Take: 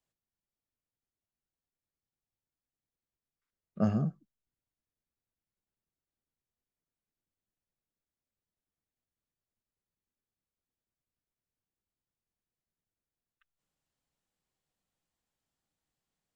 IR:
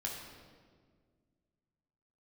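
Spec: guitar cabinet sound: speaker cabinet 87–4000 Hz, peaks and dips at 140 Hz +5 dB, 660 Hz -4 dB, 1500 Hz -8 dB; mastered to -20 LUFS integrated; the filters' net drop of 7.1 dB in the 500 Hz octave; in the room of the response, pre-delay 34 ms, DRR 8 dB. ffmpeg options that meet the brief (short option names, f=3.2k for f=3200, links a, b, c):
-filter_complex "[0:a]equalizer=f=500:t=o:g=-6.5,asplit=2[a][b];[1:a]atrim=start_sample=2205,adelay=34[c];[b][c]afir=irnorm=-1:irlink=0,volume=-9dB[d];[a][d]amix=inputs=2:normalize=0,highpass=87,equalizer=f=140:t=q:w=4:g=5,equalizer=f=660:t=q:w=4:g=-4,equalizer=f=1.5k:t=q:w=4:g=-8,lowpass=f=4k:w=0.5412,lowpass=f=4k:w=1.3066,volume=13dB"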